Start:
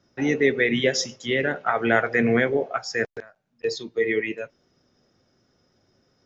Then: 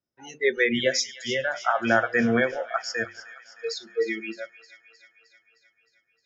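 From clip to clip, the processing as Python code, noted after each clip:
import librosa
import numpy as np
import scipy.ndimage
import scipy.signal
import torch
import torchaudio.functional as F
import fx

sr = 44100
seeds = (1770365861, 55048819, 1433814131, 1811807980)

y = fx.noise_reduce_blind(x, sr, reduce_db=25)
y = fx.hum_notches(y, sr, base_hz=50, count=7)
y = fx.echo_wet_highpass(y, sr, ms=309, feedback_pct=64, hz=1600.0, wet_db=-14)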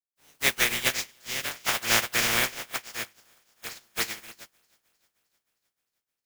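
y = fx.spec_flatten(x, sr, power=0.13)
y = fx.dynamic_eq(y, sr, hz=2200.0, q=1.6, threshold_db=-41.0, ratio=4.0, max_db=6)
y = fx.upward_expand(y, sr, threshold_db=-42.0, expansion=1.5)
y = F.gain(torch.from_numpy(y), -2.5).numpy()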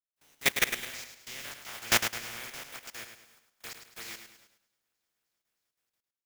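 y = fx.level_steps(x, sr, step_db=21)
y = fx.echo_feedback(y, sr, ms=105, feedback_pct=38, wet_db=-8.0)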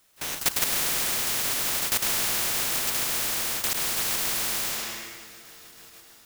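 y = fx.rev_plate(x, sr, seeds[0], rt60_s=1.5, hf_ratio=0.95, predelay_ms=120, drr_db=0.0)
y = fx.spectral_comp(y, sr, ratio=10.0)
y = F.gain(torch.from_numpy(y), -2.0).numpy()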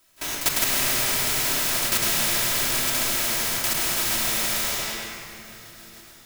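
y = fx.room_shoebox(x, sr, seeds[1], volume_m3=3600.0, walls='mixed', distance_m=2.9)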